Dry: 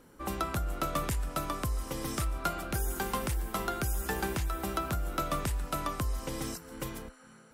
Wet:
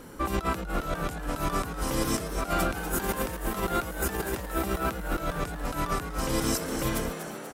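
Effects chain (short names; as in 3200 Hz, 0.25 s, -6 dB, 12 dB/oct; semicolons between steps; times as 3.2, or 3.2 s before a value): negative-ratio compressor -37 dBFS, ratio -0.5; on a send: frequency-shifting echo 0.243 s, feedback 56%, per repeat +130 Hz, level -9.5 dB; on the sum: gain +7.5 dB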